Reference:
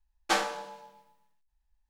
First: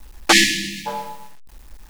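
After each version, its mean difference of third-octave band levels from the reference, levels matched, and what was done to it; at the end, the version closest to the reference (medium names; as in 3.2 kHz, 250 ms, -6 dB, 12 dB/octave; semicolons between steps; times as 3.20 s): 14.5 dB: companding laws mixed up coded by mu; spectral selection erased 0.32–0.86 s, 360–1700 Hz; loudness maximiser +24 dB; trim -1 dB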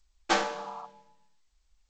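3.5 dB: spectral replace 0.57–0.83 s, 680–1400 Hz before; bass shelf 450 Hz +5 dB; G.722 64 kbps 16 kHz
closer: second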